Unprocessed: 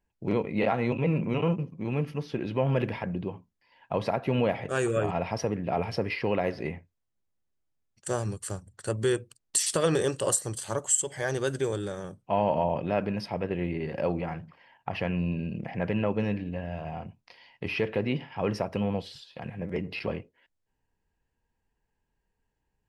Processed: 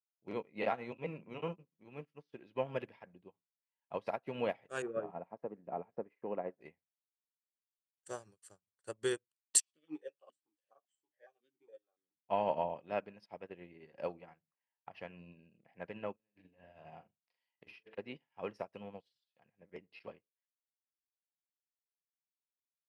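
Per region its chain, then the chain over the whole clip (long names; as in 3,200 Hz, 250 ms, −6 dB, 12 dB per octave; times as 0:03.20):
0:04.82–0:06.61: low-pass filter 1,100 Hz + low shelf with overshoot 130 Hz −7.5 dB, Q 1.5
0:09.60–0:12.16: double-tracking delay 13 ms −4 dB + formant filter that steps through the vowels 7.2 Hz
0:16.15–0:17.98: compressor whose output falls as the input rises −35 dBFS, ratio −0.5 + double-tracking delay 43 ms −7 dB
whole clip: high-pass filter 380 Hz 6 dB per octave; expander for the loud parts 2.5 to 1, over −48 dBFS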